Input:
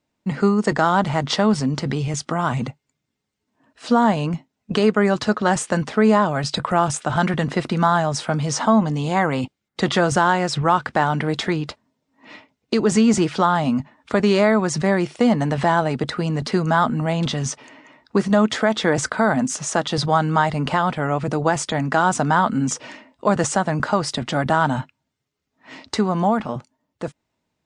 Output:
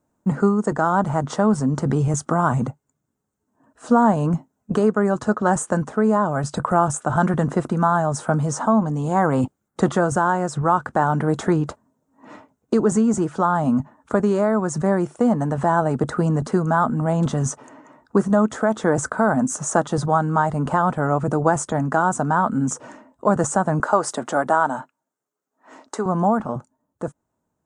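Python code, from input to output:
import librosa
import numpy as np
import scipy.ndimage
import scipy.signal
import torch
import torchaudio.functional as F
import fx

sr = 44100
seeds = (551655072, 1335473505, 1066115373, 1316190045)

y = fx.highpass(x, sr, hz=360.0, slope=12, at=(23.8, 26.06))
y = fx.band_shelf(y, sr, hz=3200.0, db=-16.0, octaves=1.7)
y = fx.rider(y, sr, range_db=10, speed_s=0.5)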